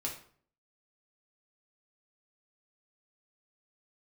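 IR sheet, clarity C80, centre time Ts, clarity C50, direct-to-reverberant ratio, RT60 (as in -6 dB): 12.0 dB, 22 ms, 8.0 dB, -2.5 dB, 0.50 s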